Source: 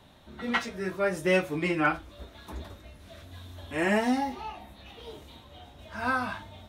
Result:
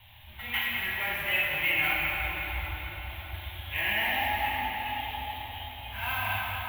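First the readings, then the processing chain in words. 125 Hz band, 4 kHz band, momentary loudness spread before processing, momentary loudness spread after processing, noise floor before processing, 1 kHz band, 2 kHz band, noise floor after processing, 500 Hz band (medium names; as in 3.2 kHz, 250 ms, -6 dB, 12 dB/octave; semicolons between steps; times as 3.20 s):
0.0 dB, +8.5 dB, 21 LU, 14 LU, -53 dBFS, +0.5 dB, +4.5 dB, -47 dBFS, -11.5 dB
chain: dead-time distortion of 0.073 ms; in parallel at -10.5 dB: companded quantiser 4-bit; on the sum: peak limiter -19.5 dBFS, peak gain reduction 8.5 dB; FFT filter 110 Hz 0 dB, 180 Hz -21 dB, 470 Hz -24 dB, 850 Hz -3 dB, 1.3 kHz -12 dB, 2.2 kHz +6 dB, 3.1 kHz +7 dB, 5 kHz -21 dB, 8.7 kHz -21 dB, 12 kHz +6 dB; on a send: tape echo 202 ms, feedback 84%, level -7 dB, low-pass 1.8 kHz; on the sum: plate-style reverb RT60 4.3 s, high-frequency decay 0.75×, DRR -4.5 dB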